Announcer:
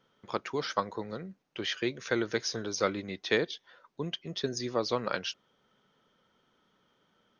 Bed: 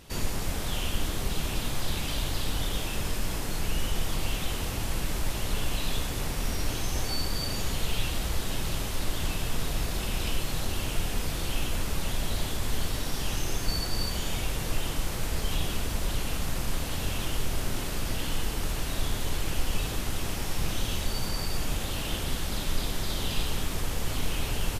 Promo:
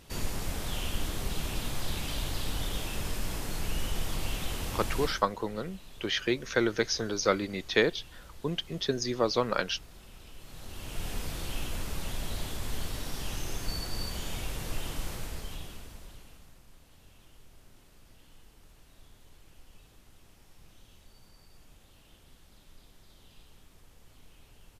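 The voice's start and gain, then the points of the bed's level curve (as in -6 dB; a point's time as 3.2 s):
4.45 s, +3.0 dB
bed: 5.04 s -3.5 dB
5.27 s -21 dB
10.32 s -21 dB
11.08 s -5.5 dB
15.1 s -5.5 dB
16.63 s -27 dB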